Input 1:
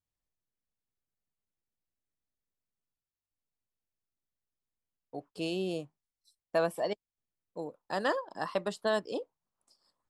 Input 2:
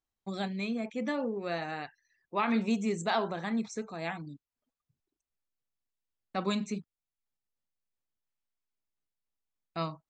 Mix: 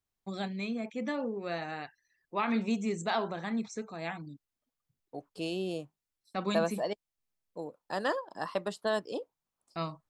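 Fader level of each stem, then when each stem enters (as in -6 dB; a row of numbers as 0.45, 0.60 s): -1.0, -1.5 dB; 0.00, 0.00 s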